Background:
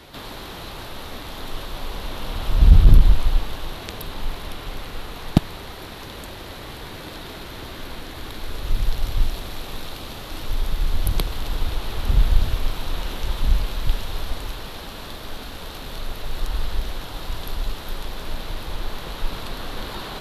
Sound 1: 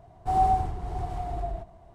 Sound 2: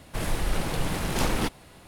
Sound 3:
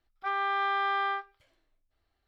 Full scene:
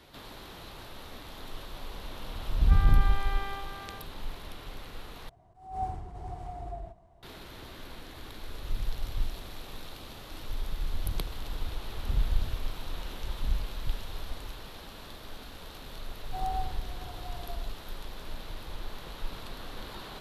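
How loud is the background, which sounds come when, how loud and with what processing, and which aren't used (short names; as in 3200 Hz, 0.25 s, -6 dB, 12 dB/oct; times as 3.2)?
background -10.5 dB
2.45 add 3 -8 dB + echo 0.379 s -8.5 dB
5.29 replace with 1 -7.5 dB + attack slew limiter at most 110 dB/s
16.06 add 1 -12 dB
not used: 2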